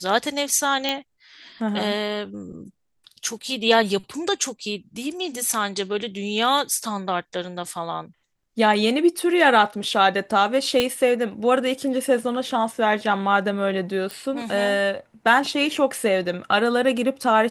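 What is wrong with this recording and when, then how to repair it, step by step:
0.89 pop -9 dBFS
10.8 pop -6 dBFS
14.11 pop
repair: de-click

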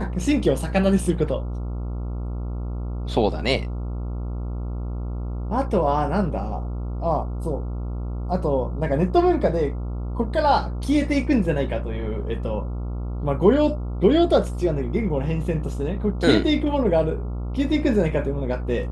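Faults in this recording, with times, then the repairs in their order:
buzz 60 Hz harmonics 23 -28 dBFS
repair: de-hum 60 Hz, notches 23

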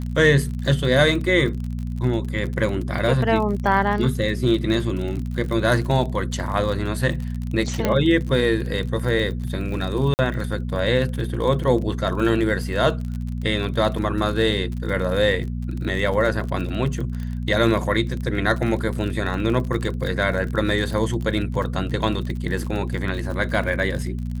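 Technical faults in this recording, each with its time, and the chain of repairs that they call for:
crackle 42/s -28 dBFS
hum 60 Hz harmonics 4 -27 dBFS
7.85 pop -7 dBFS
10.14–10.19 gap 49 ms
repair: de-click; de-hum 60 Hz, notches 4; interpolate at 10.14, 49 ms

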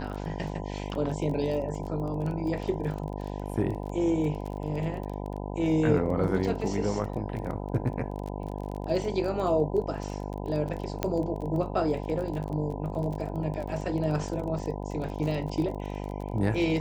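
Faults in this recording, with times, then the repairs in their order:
buzz 50 Hz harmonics 20 -35 dBFS
crackle 25/s -34 dBFS
11.03 pop -12 dBFS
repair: de-click; de-hum 50 Hz, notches 20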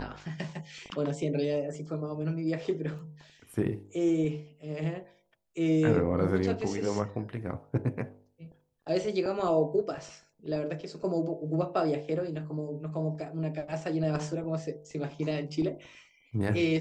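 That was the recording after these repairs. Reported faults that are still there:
none

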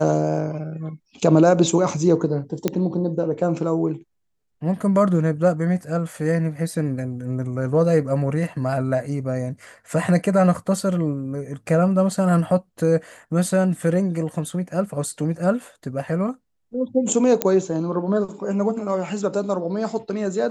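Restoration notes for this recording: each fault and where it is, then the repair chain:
2.68 pop -8 dBFS
17.42 pop -3 dBFS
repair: de-click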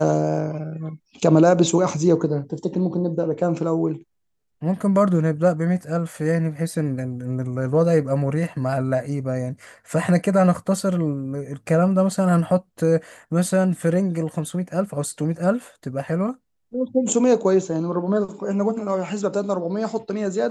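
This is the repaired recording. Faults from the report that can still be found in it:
none

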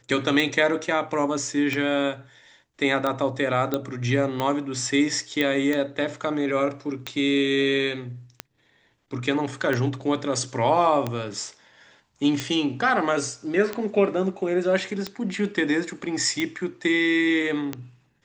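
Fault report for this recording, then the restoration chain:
tick 45 rpm -12 dBFS
3.74 pop -11 dBFS
5.41 pop -11 dBFS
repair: de-click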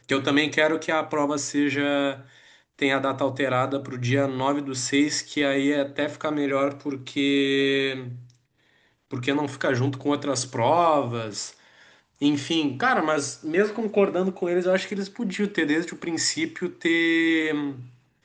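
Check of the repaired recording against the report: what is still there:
none

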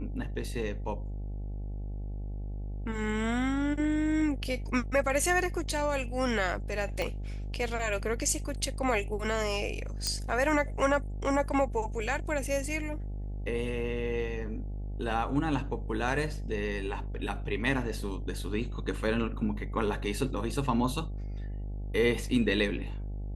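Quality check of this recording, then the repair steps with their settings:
buzz 50 Hz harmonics 17 -36 dBFS
7.02 pop -18 dBFS
10.07 pop -15 dBFS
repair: de-click; de-hum 50 Hz, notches 17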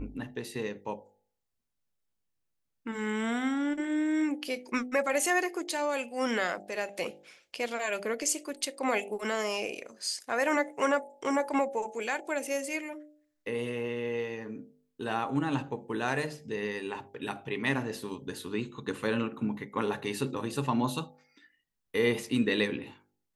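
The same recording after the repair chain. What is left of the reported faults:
7.02 pop

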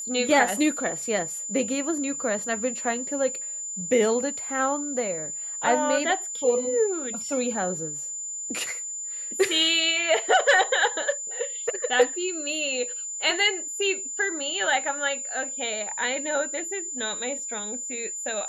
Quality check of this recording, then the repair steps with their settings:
tone 7100 Hz -31 dBFS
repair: notch 7100 Hz, Q 30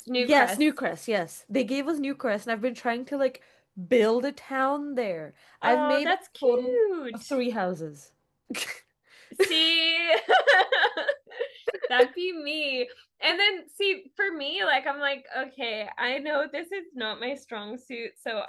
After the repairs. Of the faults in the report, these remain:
none

